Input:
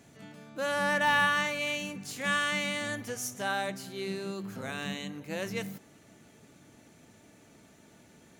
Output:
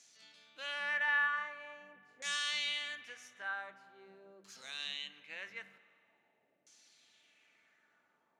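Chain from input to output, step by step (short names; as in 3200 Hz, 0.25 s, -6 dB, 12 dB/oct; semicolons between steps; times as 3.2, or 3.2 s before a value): differentiator; LFO low-pass saw down 0.45 Hz 550–5900 Hz; spring tank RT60 2.2 s, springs 52 ms, chirp 50 ms, DRR 16 dB; gain +1.5 dB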